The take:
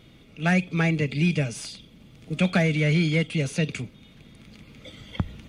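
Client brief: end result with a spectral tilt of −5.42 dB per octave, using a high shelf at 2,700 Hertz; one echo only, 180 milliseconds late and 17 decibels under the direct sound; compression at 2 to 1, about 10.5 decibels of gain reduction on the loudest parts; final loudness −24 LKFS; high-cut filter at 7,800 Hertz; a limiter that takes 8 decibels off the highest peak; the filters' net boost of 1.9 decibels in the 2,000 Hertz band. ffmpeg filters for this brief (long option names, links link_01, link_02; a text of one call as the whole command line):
ffmpeg -i in.wav -af "lowpass=7800,equalizer=frequency=2000:width_type=o:gain=4.5,highshelf=frequency=2700:gain=-5,acompressor=threshold=-37dB:ratio=2,alimiter=level_in=2.5dB:limit=-24dB:level=0:latency=1,volume=-2.5dB,aecho=1:1:180:0.141,volume=13dB" out.wav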